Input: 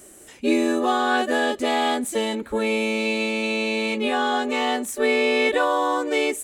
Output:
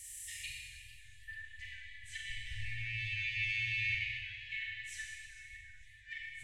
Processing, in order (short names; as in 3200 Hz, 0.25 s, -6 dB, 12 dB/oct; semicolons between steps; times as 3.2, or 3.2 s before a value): 2.3–3.95 minimum comb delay 0.33 ms; treble ducked by the level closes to 320 Hz, closed at -16.5 dBFS; Schroeder reverb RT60 1.7 s, combs from 30 ms, DRR -2.5 dB; FFT band-reject 120–1700 Hz; warbling echo 0.448 s, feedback 48%, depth 209 cents, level -18 dB; gain -2 dB